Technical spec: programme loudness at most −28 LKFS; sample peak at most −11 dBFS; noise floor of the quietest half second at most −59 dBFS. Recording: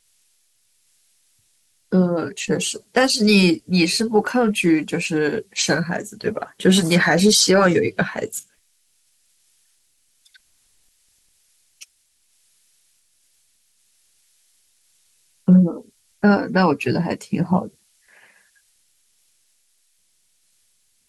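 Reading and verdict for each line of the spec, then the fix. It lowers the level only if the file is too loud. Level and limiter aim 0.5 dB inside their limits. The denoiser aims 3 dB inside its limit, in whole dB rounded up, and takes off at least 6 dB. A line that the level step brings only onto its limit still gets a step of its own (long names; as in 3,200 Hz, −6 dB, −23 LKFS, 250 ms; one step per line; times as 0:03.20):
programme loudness −18.5 LKFS: out of spec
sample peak −5.0 dBFS: out of spec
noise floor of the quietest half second −64 dBFS: in spec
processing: level −10 dB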